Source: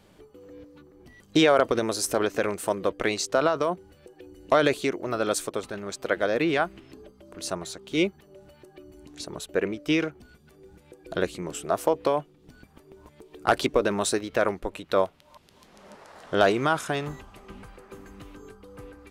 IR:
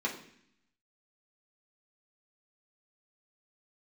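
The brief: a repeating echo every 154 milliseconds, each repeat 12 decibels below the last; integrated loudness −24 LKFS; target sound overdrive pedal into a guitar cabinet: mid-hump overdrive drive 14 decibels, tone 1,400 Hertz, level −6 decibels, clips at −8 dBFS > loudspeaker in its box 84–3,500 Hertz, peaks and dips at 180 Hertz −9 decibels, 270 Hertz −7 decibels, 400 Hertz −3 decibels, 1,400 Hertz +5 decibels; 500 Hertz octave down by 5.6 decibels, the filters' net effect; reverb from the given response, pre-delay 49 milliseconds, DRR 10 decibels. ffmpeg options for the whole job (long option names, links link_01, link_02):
-filter_complex "[0:a]equalizer=frequency=500:width_type=o:gain=-5.5,aecho=1:1:154|308|462:0.251|0.0628|0.0157,asplit=2[link_01][link_02];[1:a]atrim=start_sample=2205,adelay=49[link_03];[link_02][link_03]afir=irnorm=-1:irlink=0,volume=-16dB[link_04];[link_01][link_04]amix=inputs=2:normalize=0,asplit=2[link_05][link_06];[link_06]highpass=frequency=720:poles=1,volume=14dB,asoftclip=type=tanh:threshold=-8dB[link_07];[link_05][link_07]amix=inputs=2:normalize=0,lowpass=frequency=1400:poles=1,volume=-6dB,highpass=84,equalizer=frequency=180:width_type=q:width=4:gain=-9,equalizer=frequency=270:width_type=q:width=4:gain=-7,equalizer=frequency=400:width_type=q:width=4:gain=-3,equalizer=frequency=1400:width_type=q:width=4:gain=5,lowpass=frequency=3500:width=0.5412,lowpass=frequency=3500:width=1.3066,volume=1.5dB"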